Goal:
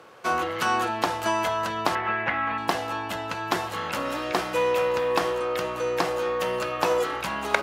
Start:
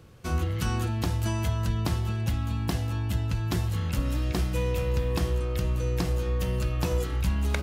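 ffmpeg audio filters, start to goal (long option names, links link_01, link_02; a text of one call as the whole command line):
ffmpeg -i in.wav -filter_complex "[0:a]highpass=710,aemphasis=mode=reproduction:type=cd,acrossover=split=1500[link_01][link_02];[link_01]acontrast=87[link_03];[link_03][link_02]amix=inputs=2:normalize=0,asettb=1/sr,asplit=3[link_04][link_05][link_06];[link_04]atrim=end=1.954[link_07];[link_05]atrim=start=1.95:end=2.58,asetpts=PTS-STARTPTS,afade=type=in:duration=0.004:curve=qsin,afade=type=out:start_time=0.626:duration=0.004:curve=qsin,lowpass=frequency=2000:width_type=q:width=4[link_08];[link_06]atrim=start=2.576[link_09];[link_07][link_08]acrossfade=duration=0.004:curve1=hsin:curve2=qsin[link_10];[link_10][link_09]acrossfade=duration=0.004:curve1=qsin:curve2=hsin,volume=8.5dB" out.wav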